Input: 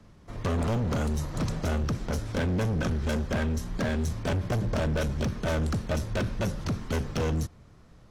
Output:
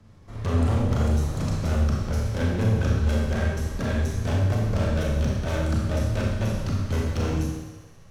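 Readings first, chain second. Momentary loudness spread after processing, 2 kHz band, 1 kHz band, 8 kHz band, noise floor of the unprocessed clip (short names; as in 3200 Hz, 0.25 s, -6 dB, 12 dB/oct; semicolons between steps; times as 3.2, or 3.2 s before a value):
5 LU, +1.0 dB, +1.5 dB, +1.5 dB, -53 dBFS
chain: bell 91 Hz +9 dB 0.67 oct; thinning echo 67 ms, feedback 83%, high-pass 230 Hz, level -16 dB; Schroeder reverb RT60 0.99 s, combs from 28 ms, DRR -2 dB; gain -3 dB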